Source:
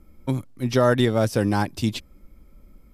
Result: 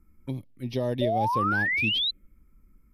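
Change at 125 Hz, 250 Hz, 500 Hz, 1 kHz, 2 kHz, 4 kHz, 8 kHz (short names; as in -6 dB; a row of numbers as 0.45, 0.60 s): -8.0 dB, -8.5 dB, -7.5 dB, +1.5 dB, +4.5 dB, +6.0 dB, under -15 dB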